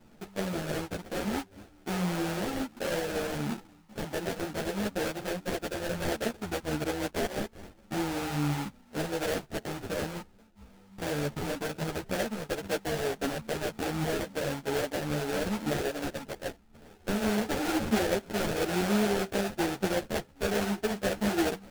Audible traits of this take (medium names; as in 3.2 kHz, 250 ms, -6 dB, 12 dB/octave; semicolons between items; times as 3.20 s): aliases and images of a low sample rate 1.1 kHz, jitter 20%; a shimmering, thickened sound